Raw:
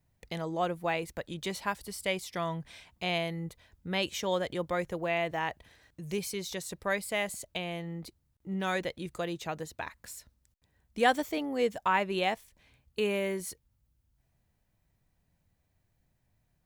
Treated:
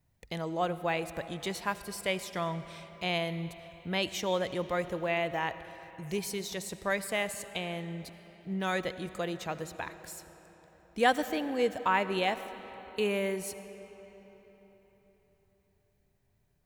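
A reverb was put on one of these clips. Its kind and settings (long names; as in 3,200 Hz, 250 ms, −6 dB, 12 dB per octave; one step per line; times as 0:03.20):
comb and all-pass reverb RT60 4.4 s, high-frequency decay 0.7×, pre-delay 35 ms, DRR 12.5 dB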